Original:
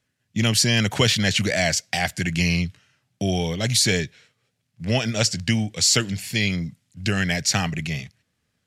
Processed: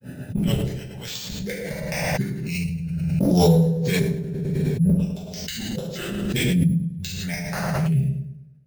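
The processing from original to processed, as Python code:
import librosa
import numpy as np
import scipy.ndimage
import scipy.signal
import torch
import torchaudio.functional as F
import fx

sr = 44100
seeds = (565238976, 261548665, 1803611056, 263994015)

y = fx.wiener(x, sr, points=41)
y = fx.noise_reduce_blind(y, sr, reduce_db=13)
y = scipy.signal.sosfilt(scipy.signal.butter(2, 110.0, 'highpass', fs=sr, output='sos'), y)
y = fx.high_shelf(y, sr, hz=5600.0, db=7.5)
y = fx.over_compress(y, sr, threshold_db=-30.0, ratio=-0.5)
y = fx.gate_flip(y, sr, shuts_db=-20.0, range_db=-31)
y = fx.tremolo_random(y, sr, seeds[0], hz=3.5, depth_pct=55)
y = fx.granulator(y, sr, seeds[1], grain_ms=182.0, per_s=9.1, spray_ms=15.0, spread_st=0)
y = np.repeat(y[::4], 4)[:len(y)]
y = fx.echo_filtered(y, sr, ms=104, feedback_pct=46, hz=840.0, wet_db=-4.0)
y = fx.rev_double_slope(y, sr, seeds[2], early_s=0.57, late_s=1.8, knee_db=-27, drr_db=-7.5)
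y = fx.pre_swell(y, sr, db_per_s=23.0)
y = y * 10.0 ** (6.0 / 20.0)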